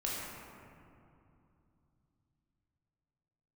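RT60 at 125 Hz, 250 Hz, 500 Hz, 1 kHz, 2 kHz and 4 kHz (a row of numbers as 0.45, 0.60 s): 4.5, 3.8, 2.7, 2.6, 2.0, 1.3 s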